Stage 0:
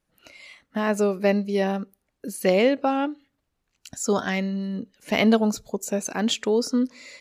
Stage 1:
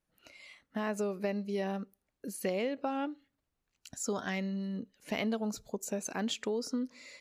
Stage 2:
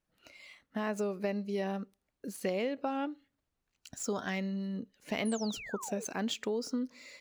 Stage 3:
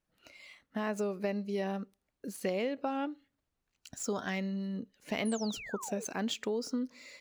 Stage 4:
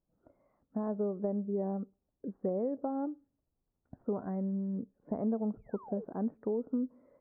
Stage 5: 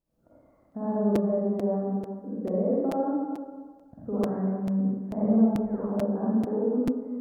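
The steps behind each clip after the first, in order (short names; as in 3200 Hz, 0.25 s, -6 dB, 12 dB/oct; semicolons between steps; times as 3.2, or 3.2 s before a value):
compressor 4:1, threshold -23 dBFS, peak gain reduction 8.5 dB; gain -7.5 dB
median filter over 3 samples; painted sound fall, 5.25–6.05, 400–11000 Hz -45 dBFS
nothing audible
Gaussian blur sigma 9.7 samples; gain +2 dB
reverb RT60 1.6 s, pre-delay 42 ms, DRR -8.5 dB; crackling interface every 0.44 s, samples 256, repeat, from 0.71; gain -1.5 dB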